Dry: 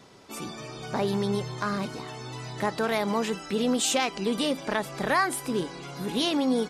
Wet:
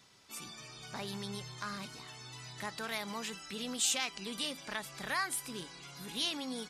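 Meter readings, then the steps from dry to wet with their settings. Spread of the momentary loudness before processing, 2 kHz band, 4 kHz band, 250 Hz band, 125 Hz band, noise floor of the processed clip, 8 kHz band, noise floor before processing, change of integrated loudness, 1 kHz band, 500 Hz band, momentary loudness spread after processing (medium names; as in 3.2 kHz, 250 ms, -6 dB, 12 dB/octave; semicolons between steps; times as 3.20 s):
13 LU, -8.0 dB, -5.0 dB, -16.0 dB, -13.5 dB, -52 dBFS, -3.5 dB, -42 dBFS, -9.5 dB, -12.5 dB, -17.5 dB, 15 LU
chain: amplifier tone stack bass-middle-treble 5-5-5; trim +2.5 dB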